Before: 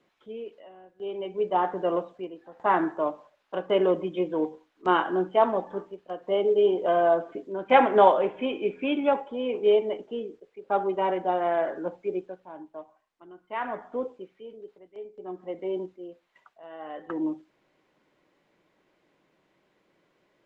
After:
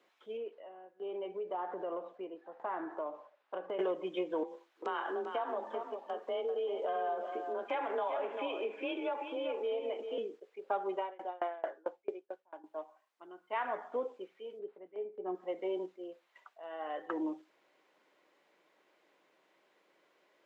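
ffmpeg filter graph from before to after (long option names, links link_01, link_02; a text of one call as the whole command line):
ffmpeg -i in.wav -filter_complex "[0:a]asettb=1/sr,asplit=3[link_01][link_02][link_03];[link_01]atrim=end=0.374[link_04];[link_02]atrim=start=0.37:end=3.79,asetpts=PTS-STARTPTS,afade=type=in:duration=0.004:curve=qsin,afade=type=out:start_time=3.416:duration=0.004:curve=qsin,lowpass=frequency=1500:poles=1,acompressor=threshold=-33dB:ratio=5:attack=3.2:release=140:knee=1:detection=peak[link_05];[link_03]atrim=start=3.786[link_06];[link_04][link_05]acrossfade=duration=0.004:curve1=hsin:curve2=qsin[link_07];[link_07][link_06]acrossfade=duration=0.004:curve1=qsin:curve2=hsin,asettb=1/sr,asplit=3[link_08][link_09][link_10];[link_08]atrim=end=4.434[link_11];[link_09]atrim=start=4.43:end=10.18,asetpts=PTS-STARTPTS,afade=type=in:duration=0.004:curve=qsin,afade=type=out:start_time=5.746:duration=0.004:curve=qsin,acompressor=threshold=-32dB:ratio=3:attack=3.2:release=140:knee=1:detection=peak,afreqshift=30,aecho=1:1:392:0.355,atrim=end_sample=253575[link_12];[link_10]atrim=start=10.176[link_13];[link_11][link_12]acrossfade=duration=0.004:curve1=hsin:curve2=qsin[link_14];[link_14][link_13]acrossfade=duration=0.004:curve1=qsin:curve2=hsin,asettb=1/sr,asplit=3[link_15][link_16][link_17];[link_15]atrim=end=10.974[link_18];[link_16]atrim=start=10.97:end=12.64,asetpts=PTS-STARTPTS,afade=type=in:duration=0.004:curve=qsin,afade=type=out:start_time=1.666:duration=0.004:curve=qsin,equalizer=frequency=160:width_type=o:width=0.55:gain=-14.5,aeval=exprs='val(0)*pow(10,-30*if(lt(mod(4.5*n/s,1),2*abs(4.5)/1000),1-mod(4.5*n/s,1)/(2*abs(4.5)/1000),(mod(4.5*n/s,1)-2*abs(4.5)/1000)/(1-2*abs(4.5)/1000))/20)':channel_layout=same[link_19];[link_17]atrim=start=12.636[link_20];[link_18][link_19]acrossfade=duration=0.004:curve1=hsin:curve2=qsin[link_21];[link_21][link_20]acrossfade=duration=0.004:curve1=qsin:curve2=hsin,asettb=1/sr,asplit=3[link_22][link_23][link_24];[link_22]atrim=end=14.594[link_25];[link_23]atrim=start=14.59:end=15.35,asetpts=PTS-STARTPTS,afade=type=in:duration=0.004:curve=qsin,afade=type=out:start_time=0.756:duration=0.004:curve=qsin,lowpass=2300,equalizer=frequency=160:width=0.44:gain=6.5[link_26];[link_24]atrim=start=15.346[link_27];[link_25][link_26]acrossfade=duration=0.004:curve1=hsin:curve2=qsin[link_28];[link_28][link_27]acrossfade=duration=0.004:curve1=qsin:curve2=hsin,highpass=420,acompressor=threshold=-31dB:ratio=5" out.wav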